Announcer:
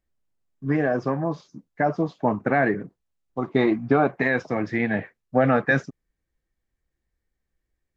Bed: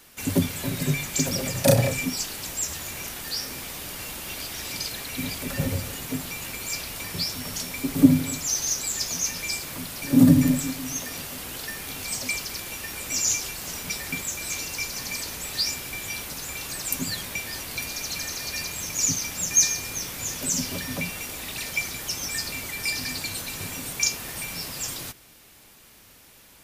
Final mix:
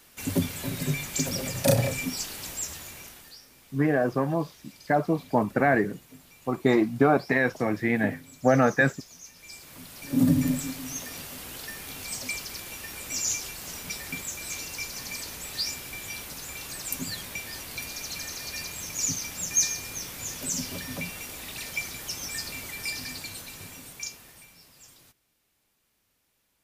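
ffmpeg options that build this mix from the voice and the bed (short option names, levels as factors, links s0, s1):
-filter_complex "[0:a]adelay=3100,volume=0.891[s0];[1:a]volume=3.98,afade=t=out:st=2.49:d=0.9:silence=0.149624,afade=t=in:st=9.35:d=1.18:silence=0.16788,afade=t=out:st=22.72:d=1.84:silence=0.149624[s1];[s0][s1]amix=inputs=2:normalize=0"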